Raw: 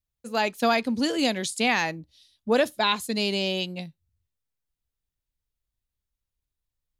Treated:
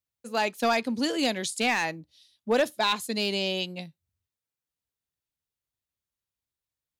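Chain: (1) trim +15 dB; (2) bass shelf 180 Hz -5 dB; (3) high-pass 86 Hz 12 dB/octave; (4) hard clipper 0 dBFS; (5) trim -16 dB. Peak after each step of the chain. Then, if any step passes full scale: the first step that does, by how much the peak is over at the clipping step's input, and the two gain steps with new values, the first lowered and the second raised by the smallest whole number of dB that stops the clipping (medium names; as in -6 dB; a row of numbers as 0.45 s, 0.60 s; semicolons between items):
+5.5 dBFS, +5.5 dBFS, +5.5 dBFS, 0.0 dBFS, -16.0 dBFS; step 1, 5.5 dB; step 1 +9 dB, step 5 -10 dB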